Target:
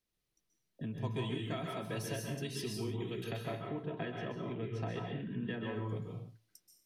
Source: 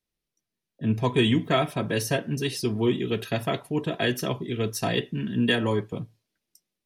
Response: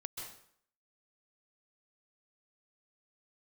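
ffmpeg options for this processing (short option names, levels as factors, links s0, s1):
-filter_complex "[0:a]asplit=3[s0][s1][s2];[s0]afade=t=out:st=3.4:d=0.02[s3];[s1]lowpass=2200,afade=t=in:st=3.4:d=0.02,afade=t=out:st=5.75:d=0.02[s4];[s2]afade=t=in:st=5.75:d=0.02[s5];[s3][s4][s5]amix=inputs=3:normalize=0,acompressor=threshold=0.0126:ratio=5[s6];[1:a]atrim=start_sample=2205,afade=t=out:st=0.38:d=0.01,atrim=end_sample=17199[s7];[s6][s7]afir=irnorm=-1:irlink=0,volume=1.33"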